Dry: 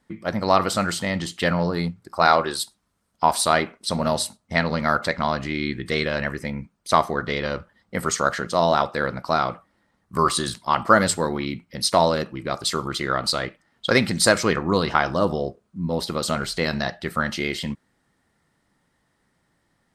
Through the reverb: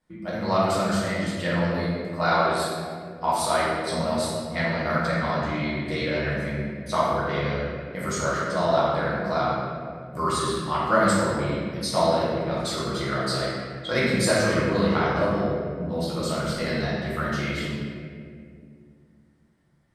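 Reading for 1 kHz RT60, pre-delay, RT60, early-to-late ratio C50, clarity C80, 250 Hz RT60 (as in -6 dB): 1.8 s, 6 ms, 2.2 s, -2.5 dB, 0.0 dB, 3.2 s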